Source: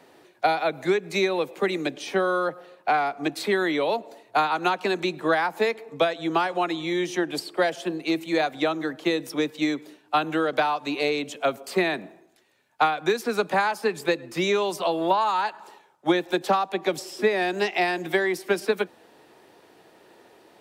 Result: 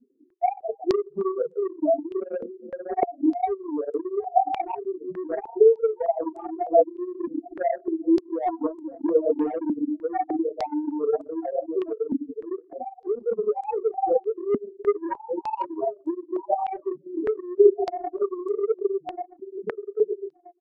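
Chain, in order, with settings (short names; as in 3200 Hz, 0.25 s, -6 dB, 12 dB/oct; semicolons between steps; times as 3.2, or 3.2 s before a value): regenerating reverse delay 0.64 s, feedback 44%, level -2 dB; tilt shelf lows +6.5 dB; on a send: feedback echo 0.128 s, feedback 33%, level -15 dB; on the sum: loudest bins only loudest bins 1; in parallel at +0.5 dB: limiter -23 dBFS, peak gain reduction 10 dB; on the sum: chorus voices 4, 1.2 Hz, delay 30 ms, depth 3.4 ms; soft clip -16.5 dBFS, distortion -19 dB; comb 4.3 ms, depth 41%; transient shaper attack +10 dB, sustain -11 dB; stepped low-pass 3.3 Hz 240–7800 Hz; gain -5 dB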